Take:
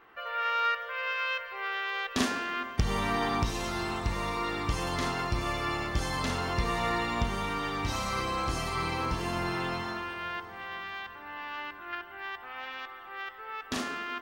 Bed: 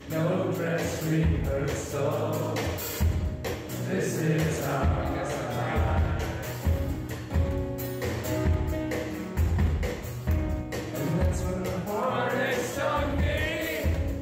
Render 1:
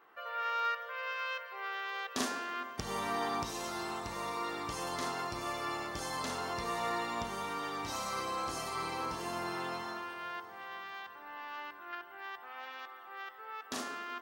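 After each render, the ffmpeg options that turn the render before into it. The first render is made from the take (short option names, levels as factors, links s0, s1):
-af "highpass=f=620:p=1,equalizer=f=2500:t=o:w=1.8:g=-8"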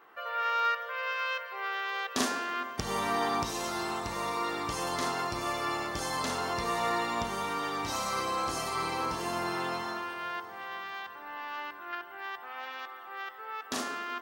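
-af "volume=1.78"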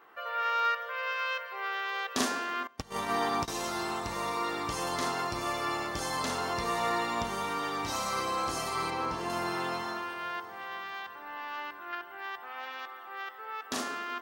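-filter_complex "[0:a]asettb=1/sr,asplit=3[s0][s1][s2];[s0]atrim=end=2.674[s3];[s1]atrim=start=2.67:end=3.48,asetpts=PTS-STARTPTS,afade=t=in:d=0.004:c=qsin,afade=t=out:st=0.806:d=0.004:c=qsin,agate=range=0.112:threshold=0.0251:ratio=16:release=100:detection=peak[s4];[s2]atrim=start=3.476[s5];[s3][s4]acrossfade=d=0.004:c1=hsin:c2=qsin[s6];[s6][s5]acrossfade=d=0.004:c1=qsin:c2=hsin,asettb=1/sr,asplit=3[s7][s8][s9];[s7]atrim=end=8.904[s10];[s8]atrim=start=8.9:end=9.3,asetpts=PTS-STARTPTS,afade=t=in:d=0.004:c=qsin,afade=t=out:st=0.396:d=0.004:c=qsin,highshelf=f=6000:g=-11[s11];[s9]atrim=start=9.296[s12];[s10][s11]acrossfade=d=0.004:c1=hsin:c2=qsin[s13];[s13][s12]acrossfade=d=0.004:c1=qsin:c2=hsin,asettb=1/sr,asplit=3[s14][s15][s16];[s14]atrim=end=12.944[s17];[s15]atrim=start=12.94:end=13.46,asetpts=PTS-STARTPTS,afade=t=in:d=0.004:c=qsin,afade=t=out:st=0.516:d=0.004:c=qsin,highpass=f=110:w=0.5412,highpass=f=110:w=1.3066[s18];[s16]atrim=start=13.456[s19];[s17][s18]acrossfade=d=0.004:c1=hsin:c2=qsin[s20];[s20][s19]acrossfade=d=0.004:c1=qsin:c2=hsin"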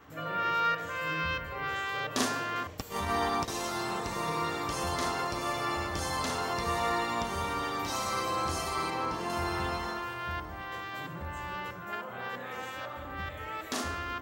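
-filter_complex "[1:a]volume=0.158[s0];[0:a][s0]amix=inputs=2:normalize=0"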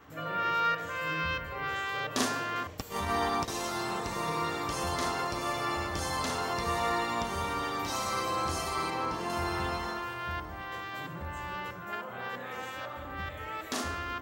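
-af anull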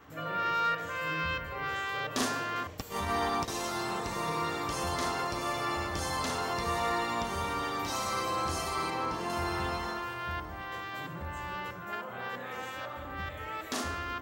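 -af "asoftclip=type=tanh:threshold=0.106"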